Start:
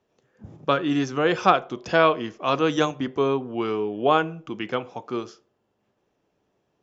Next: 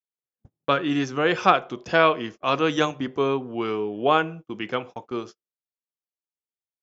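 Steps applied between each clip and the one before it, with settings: gate -37 dBFS, range -40 dB; dynamic EQ 2200 Hz, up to +4 dB, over -35 dBFS, Q 0.98; gain -1 dB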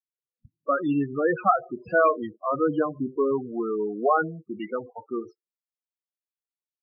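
loudest bins only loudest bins 8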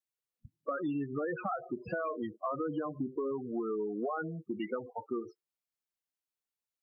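limiter -18.5 dBFS, peak gain reduction 11 dB; compressor, threshold -32 dBFS, peak gain reduction 9.5 dB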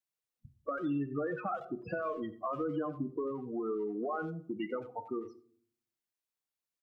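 speakerphone echo 90 ms, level -14 dB; reverb RT60 0.55 s, pre-delay 6 ms, DRR 13 dB; gain -1 dB

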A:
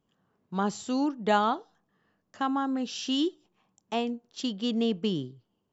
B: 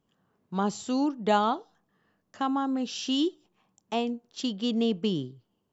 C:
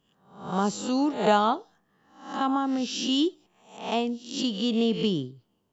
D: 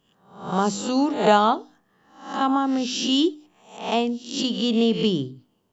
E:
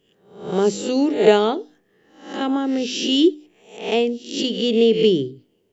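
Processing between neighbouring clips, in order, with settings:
dynamic EQ 1700 Hz, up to -5 dB, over -47 dBFS, Q 2.1; gain +1 dB
spectral swells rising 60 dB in 0.53 s; gain +1.5 dB
notches 50/100/150/200/250/300 Hz; gain +4.5 dB
EQ curve 250 Hz 0 dB, 410 Hz +11 dB, 720 Hz -3 dB, 1100 Hz -10 dB, 2100 Hz +6 dB, 4100 Hz 0 dB

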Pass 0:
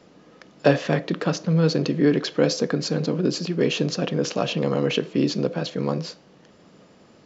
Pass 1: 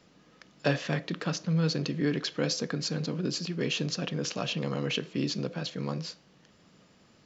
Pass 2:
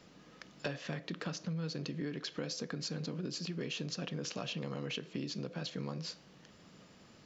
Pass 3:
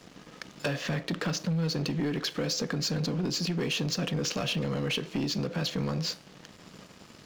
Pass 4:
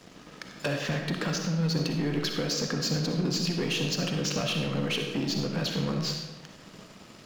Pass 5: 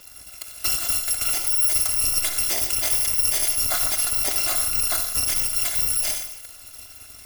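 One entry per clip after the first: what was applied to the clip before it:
bell 470 Hz -8.5 dB 2.6 oct; gain -3 dB
compressor 6:1, threshold -38 dBFS, peak gain reduction 16.5 dB; gain +1.5 dB
sample leveller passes 3
reverb RT60 1.0 s, pre-delay 20 ms, DRR 3 dB
FFT order left unsorted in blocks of 256 samples; gain +6.5 dB

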